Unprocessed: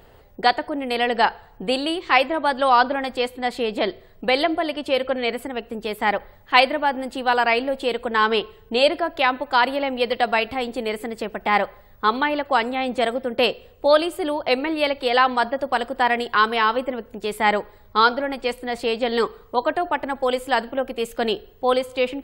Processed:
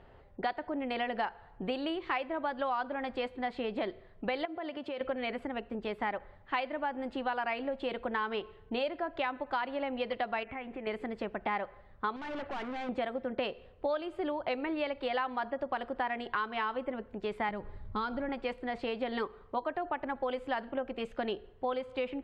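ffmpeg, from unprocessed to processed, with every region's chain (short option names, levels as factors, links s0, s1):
-filter_complex "[0:a]asettb=1/sr,asplit=3[s0][s1][s2];[s0]atrim=end=4.454[s3];[s1]atrim=start=4.45:end=5.01,asetpts=PTS-STARTPTS,afade=t=in:d=0.004:c=qsin,afade=t=out:st=0.556:d=0.004:c=qsin,highpass=130,acompressor=threshold=0.0398:ratio=6:attack=3.2:release=140:knee=1:detection=peak[s4];[s2]atrim=start=5.006[s5];[s3][s4]acrossfade=d=0.004:c1=hsin:c2=qsin[s6];[s6][s5]acrossfade=d=0.004:c1=qsin:c2=hsin,asettb=1/sr,asplit=3[s7][s8][s9];[s7]atrim=end=10.434[s10];[s8]atrim=start=10.43:end=10.87,asetpts=PTS-STARTPTS,afade=t=in:d=0.004:c=qsin,afade=t=out:st=0.436:d=0.004:c=qsin,highshelf=f=3300:t=q:w=3:g=-13,acompressor=threshold=0.0251:ratio=3:attack=3.2:release=140:knee=1:detection=peak[s11];[s9]atrim=start=10.866[s12];[s10][s11]acrossfade=d=0.004:c1=hsin:c2=qsin[s13];[s13][s12]acrossfade=d=0.004:c1=qsin:c2=hsin,asettb=1/sr,asplit=3[s14][s15][s16];[s14]atrim=end=12.164[s17];[s15]atrim=start=12.16:end=12.89,asetpts=PTS-STARTPTS,afade=t=in:d=0.004:c=qsin,afade=t=out:st=0.726:d=0.004:c=qsin,acontrast=62,aeval=exprs='(tanh(31.6*val(0)+0.45)-tanh(0.45))/31.6':c=same[s18];[s16]atrim=start=12.886[s19];[s17][s18]acrossfade=d=0.004:c1=hsin:c2=qsin[s20];[s20][s19]acrossfade=d=0.004:c1=qsin:c2=hsin,asettb=1/sr,asplit=3[s21][s22][s23];[s21]atrim=end=17.494[s24];[s22]atrim=start=17.49:end=18.29,asetpts=PTS-STARTPTS,afade=t=in:d=0.004:c=qsin,afade=t=out:st=0.796:d=0.004:c=qsin,bass=f=250:g=14,treble=f=4000:g=4,acompressor=threshold=0.0282:ratio=1.5:attack=3.2:release=140:knee=1:detection=peak[s25];[s23]atrim=start=18.286[s26];[s24][s25]acrossfade=d=0.004:c1=hsin:c2=qsin[s27];[s27][s26]acrossfade=d=0.004:c1=qsin:c2=hsin,lowpass=2600,bandreject=f=470:w=13,acompressor=threshold=0.0631:ratio=6,volume=0.501"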